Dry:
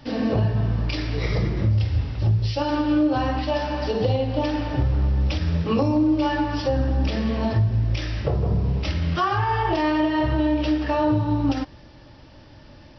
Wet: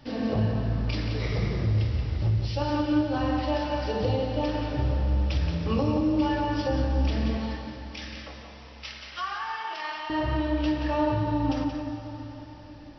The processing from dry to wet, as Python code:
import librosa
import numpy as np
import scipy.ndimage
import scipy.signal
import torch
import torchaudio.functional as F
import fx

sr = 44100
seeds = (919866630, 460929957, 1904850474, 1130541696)

y = fx.highpass(x, sr, hz=1300.0, slope=12, at=(7.37, 10.1))
y = y + 10.0 ** (-7.5 / 20.0) * np.pad(y, (int(177 * sr / 1000.0), 0))[:len(y)]
y = fx.rev_plate(y, sr, seeds[0], rt60_s=4.3, hf_ratio=0.95, predelay_ms=0, drr_db=5.5)
y = y * 10.0 ** (-5.5 / 20.0)